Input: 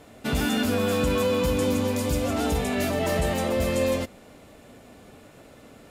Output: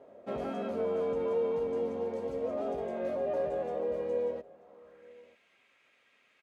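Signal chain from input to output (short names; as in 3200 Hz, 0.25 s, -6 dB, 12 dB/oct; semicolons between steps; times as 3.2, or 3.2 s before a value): band-pass sweep 610 Hz -> 2600 Hz, 4.14–4.75; speed mistake 48 kHz file played as 44.1 kHz; echo 0.934 s -21.5 dB; vocal rider within 5 dB 2 s; gain -2.5 dB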